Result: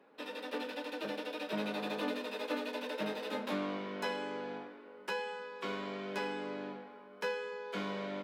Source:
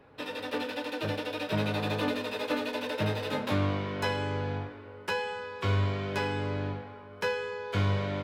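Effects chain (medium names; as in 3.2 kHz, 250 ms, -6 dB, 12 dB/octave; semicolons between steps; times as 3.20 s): elliptic high-pass 190 Hz, stop band 60 dB; trim -5.5 dB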